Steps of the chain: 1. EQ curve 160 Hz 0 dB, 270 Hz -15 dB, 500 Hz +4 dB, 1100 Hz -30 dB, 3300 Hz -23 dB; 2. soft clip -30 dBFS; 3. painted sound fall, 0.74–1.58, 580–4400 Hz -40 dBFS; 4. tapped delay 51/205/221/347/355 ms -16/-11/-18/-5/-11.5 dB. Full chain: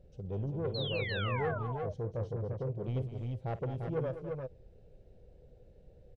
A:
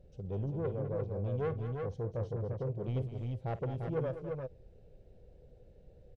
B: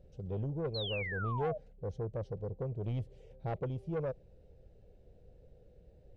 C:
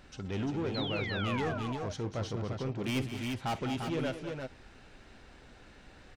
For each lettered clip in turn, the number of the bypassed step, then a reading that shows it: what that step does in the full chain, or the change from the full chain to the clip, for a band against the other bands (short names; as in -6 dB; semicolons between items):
3, 2 kHz band -12.5 dB; 4, echo-to-direct -3.0 dB to none; 1, loudness change +1.5 LU